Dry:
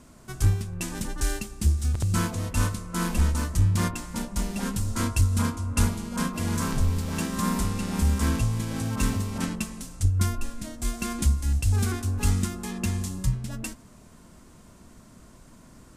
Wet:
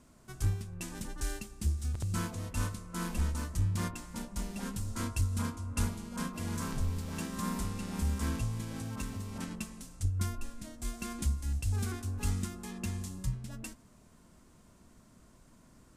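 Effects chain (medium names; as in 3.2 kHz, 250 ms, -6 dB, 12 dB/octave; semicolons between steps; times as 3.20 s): 8.67–9.51 s: compression, threshold -25 dBFS, peak gain reduction 7 dB; trim -9 dB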